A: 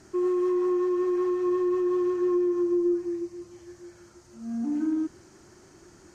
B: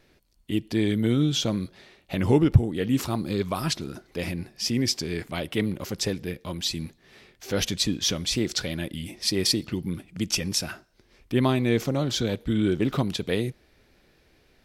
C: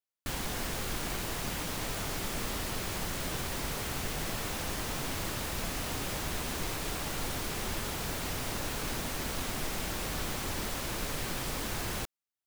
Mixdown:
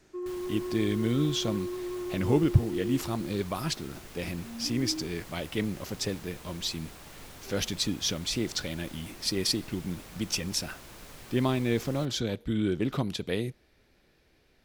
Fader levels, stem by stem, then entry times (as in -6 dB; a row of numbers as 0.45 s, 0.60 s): -10.5 dB, -4.5 dB, -12.5 dB; 0.00 s, 0.00 s, 0.00 s